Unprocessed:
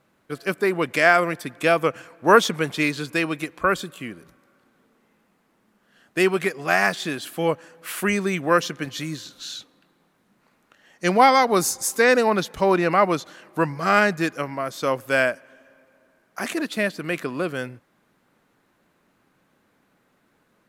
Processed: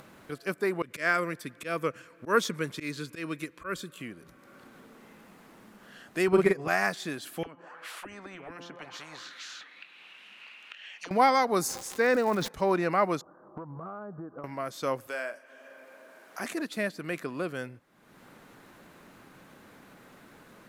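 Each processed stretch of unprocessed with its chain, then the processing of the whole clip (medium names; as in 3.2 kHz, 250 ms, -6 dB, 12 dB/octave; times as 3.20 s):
0.82–3.99 s: peaking EQ 760 Hz -14.5 dB 0.34 oct + slow attack 121 ms
6.28–6.68 s: tilt EQ -2 dB/octave + transient shaper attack +8 dB, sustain -2 dB + doubling 45 ms -3 dB
7.43–11.11 s: de-hum 172.4 Hz, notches 19 + auto-wah 270–2800 Hz, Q 7, down, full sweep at -19.5 dBFS + spectrum-flattening compressor 4:1
11.67–12.47 s: low-pass 2.9 kHz 6 dB/octave + crackle 340 per s -28 dBFS + decay stretcher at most 84 dB/s
13.21–14.44 s: steep low-pass 1.3 kHz 48 dB/octave + compression, threshold -31 dBFS
15.07–16.39 s: high-pass 360 Hz + compression 2:1, threshold -29 dBFS + doubling 42 ms -10 dB
whole clip: dynamic bell 3 kHz, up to -5 dB, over -40 dBFS, Q 2.6; upward compressor, threshold -30 dBFS; trim -7 dB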